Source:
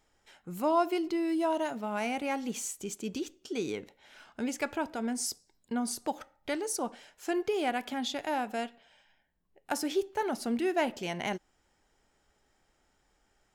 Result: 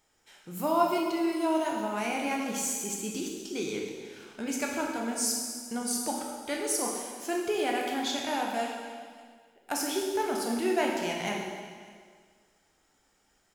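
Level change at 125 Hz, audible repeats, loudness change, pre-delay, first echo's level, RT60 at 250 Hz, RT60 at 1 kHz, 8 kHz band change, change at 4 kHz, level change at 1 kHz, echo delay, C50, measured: +1.0 dB, 1, +2.5 dB, 6 ms, -23.5 dB, 1.9 s, 1.8 s, +7.0 dB, +4.5 dB, +2.5 dB, 598 ms, 1.5 dB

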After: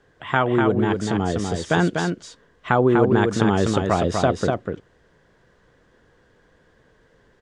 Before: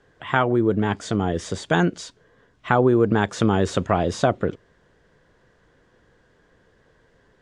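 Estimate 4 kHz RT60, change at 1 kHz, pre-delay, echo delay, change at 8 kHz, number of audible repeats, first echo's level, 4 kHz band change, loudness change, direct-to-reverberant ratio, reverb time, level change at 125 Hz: no reverb, +1.5 dB, no reverb, 246 ms, +1.5 dB, 1, -4.5 dB, +1.5 dB, +1.0 dB, no reverb, no reverb, +1.0 dB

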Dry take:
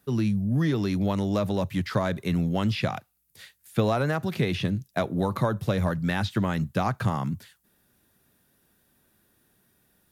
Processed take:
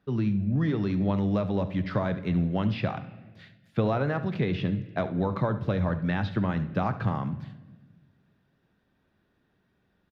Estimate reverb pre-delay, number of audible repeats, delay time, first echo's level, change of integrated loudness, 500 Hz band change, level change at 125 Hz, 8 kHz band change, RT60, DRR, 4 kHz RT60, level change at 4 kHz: 6 ms, 1, 70 ms, -15.5 dB, -1.5 dB, -2.0 dB, -1.0 dB, under -15 dB, 1.3 s, 10.5 dB, 1.0 s, -7.5 dB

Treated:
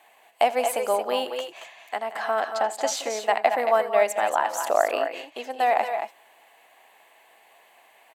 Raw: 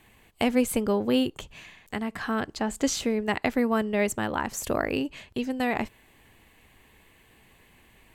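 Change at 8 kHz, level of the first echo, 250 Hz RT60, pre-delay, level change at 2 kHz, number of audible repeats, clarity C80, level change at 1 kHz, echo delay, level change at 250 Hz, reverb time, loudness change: +1.0 dB, -18.0 dB, no reverb, no reverb, +2.0 dB, 3, no reverb, +9.5 dB, 81 ms, -15.5 dB, no reverb, +3.0 dB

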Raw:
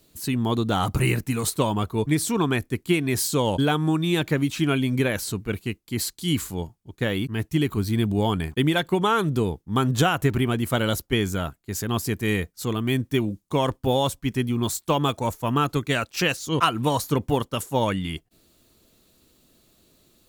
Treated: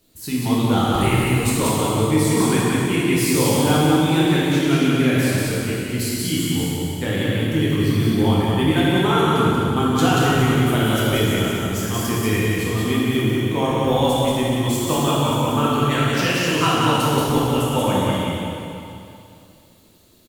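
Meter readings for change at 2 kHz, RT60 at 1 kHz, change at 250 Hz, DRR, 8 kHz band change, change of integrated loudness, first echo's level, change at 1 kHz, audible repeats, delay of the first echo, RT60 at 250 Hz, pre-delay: +5.0 dB, 2.7 s, +6.0 dB, -8.0 dB, +5.0 dB, +5.5 dB, -2.5 dB, +5.0 dB, 1, 183 ms, 2.7 s, 7 ms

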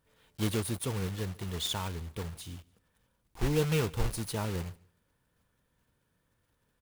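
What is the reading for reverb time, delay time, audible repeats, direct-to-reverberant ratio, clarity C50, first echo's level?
no reverb, 148 ms, 1, no reverb, no reverb, -24.0 dB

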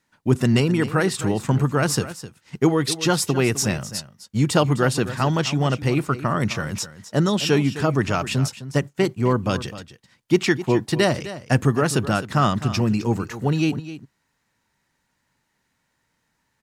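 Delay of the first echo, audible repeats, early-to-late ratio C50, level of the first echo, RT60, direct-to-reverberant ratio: 258 ms, 1, no reverb, -14.0 dB, no reverb, no reverb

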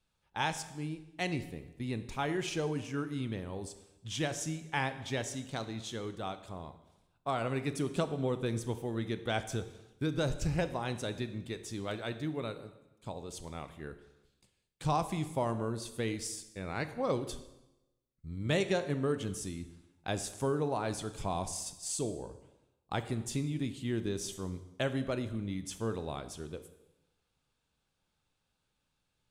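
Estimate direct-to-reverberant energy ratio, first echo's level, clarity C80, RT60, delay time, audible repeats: 10.5 dB, no echo, 14.5 dB, 0.95 s, no echo, no echo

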